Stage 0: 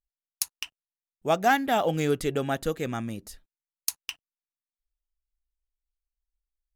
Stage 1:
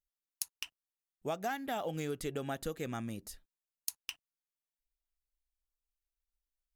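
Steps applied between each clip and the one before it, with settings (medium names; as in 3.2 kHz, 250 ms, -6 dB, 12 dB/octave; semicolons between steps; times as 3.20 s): treble shelf 6.5 kHz +4 dB; compression 5:1, threshold -28 dBFS, peak gain reduction 11 dB; trim -5.5 dB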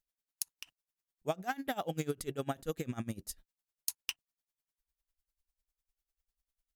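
tone controls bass +3 dB, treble +2 dB; logarithmic tremolo 10 Hz, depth 22 dB; trim +5 dB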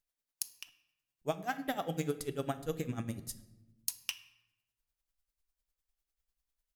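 simulated room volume 410 m³, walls mixed, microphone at 0.33 m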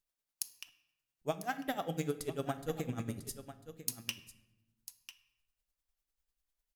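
delay 997 ms -13 dB; trim -1 dB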